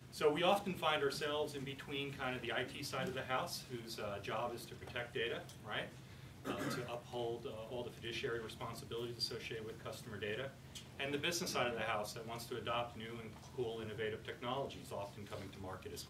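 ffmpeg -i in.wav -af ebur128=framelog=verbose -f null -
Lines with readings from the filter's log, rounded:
Integrated loudness:
  I:         -41.6 LUFS
  Threshold: -51.7 LUFS
Loudness range:
  LRA:         4.2 LU
  Threshold: -62.4 LUFS
  LRA low:   -44.3 LUFS
  LRA high:  -40.1 LUFS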